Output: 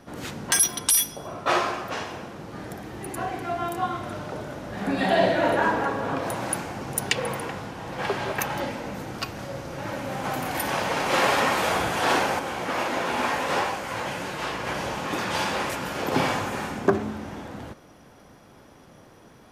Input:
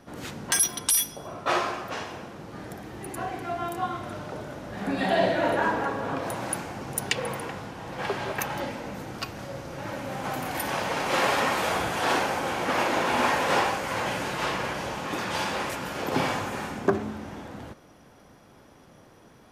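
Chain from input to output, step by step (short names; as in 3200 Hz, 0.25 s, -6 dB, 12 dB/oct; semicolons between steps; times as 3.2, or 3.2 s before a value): 12.39–14.67 flange 1.6 Hz, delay 10 ms, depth 8.2 ms, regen +65%; gain +2.5 dB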